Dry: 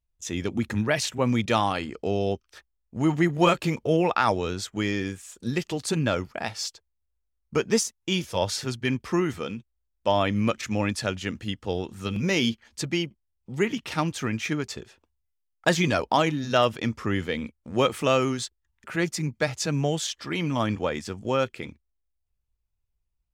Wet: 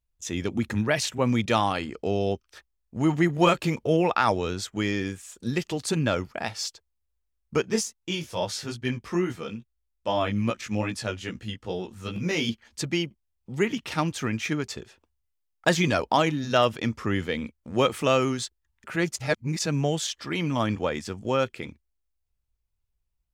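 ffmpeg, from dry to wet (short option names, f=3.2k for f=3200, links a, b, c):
-filter_complex "[0:a]asettb=1/sr,asplit=3[a][b][c];[a]atrim=end=7.624[d];[b]atrim=start=7.62:end=12.49,asetpts=PTS-STARTPTS,afade=t=in:d=0.004:c=qsin,afade=t=out:st=4.866:d=0.004:c=qsin,flanger=delay=16:depth=3.3:speed=2.4[e];[c]atrim=start=12.486[f];[d][e]acrossfade=d=0.004:c1=hsin:c2=qsin[g];[g][f]acrossfade=d=0.004:c1=qsin:c2=hsin,asplit=3[h][i][j];[h]atrim=end=19.162[k];[i]atrim=start=19.158:end=19.592,asetpts=PTS-STARTPTS,areverse[l];[j]atrim=start=19.588[m];[k][l]acrossfade=d=0.004:c1=hsin:c2=hsin[n];[n][m]acrossfade=d=0.004:c1=hsin:c2=hsin"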